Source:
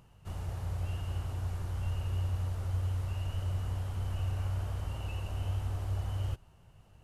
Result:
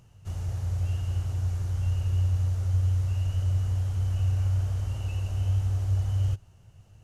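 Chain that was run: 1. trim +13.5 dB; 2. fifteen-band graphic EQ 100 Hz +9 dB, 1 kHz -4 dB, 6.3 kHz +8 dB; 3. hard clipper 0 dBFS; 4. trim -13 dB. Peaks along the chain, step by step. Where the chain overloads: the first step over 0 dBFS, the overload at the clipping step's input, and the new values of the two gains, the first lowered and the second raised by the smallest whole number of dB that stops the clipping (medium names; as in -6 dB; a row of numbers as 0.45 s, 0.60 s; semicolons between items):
-9.5 dBFS, -3.5 dBFS, -3.5 dBFS, -16.5 dBFS; nothing clips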